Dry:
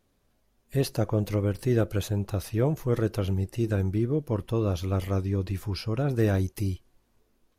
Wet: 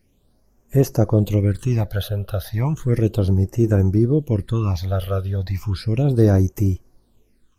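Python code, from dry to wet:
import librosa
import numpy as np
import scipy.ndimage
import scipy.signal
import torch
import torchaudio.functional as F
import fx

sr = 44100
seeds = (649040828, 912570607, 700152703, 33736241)

y = fx.phaser_stages(x, sr, stages=8, low_hz=270.0, high_hz=3800.0, hz=0.34, feedback_pct=40)
y = y * 10.0 ** (7.5 / 20.0)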